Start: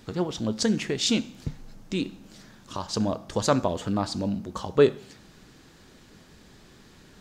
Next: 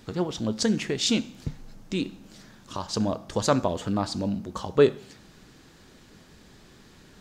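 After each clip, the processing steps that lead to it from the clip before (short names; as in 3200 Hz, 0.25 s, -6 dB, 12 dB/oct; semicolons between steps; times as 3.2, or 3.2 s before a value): nothing audible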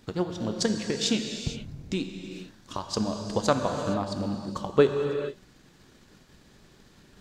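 transient shaper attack +6 dB, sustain -6 dB; non-linear reverb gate 0.49 s flat, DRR 4.5 dB; gain -5 dB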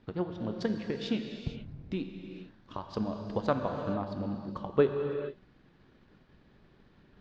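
air absorption 310 m; gain -4 dB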